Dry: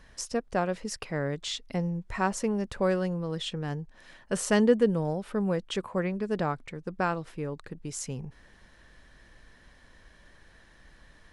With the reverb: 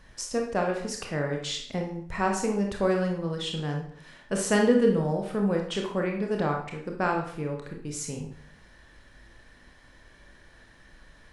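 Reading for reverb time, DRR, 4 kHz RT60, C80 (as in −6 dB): 0.60 s, 1.0 dB, 0.50 s, 9.5 dB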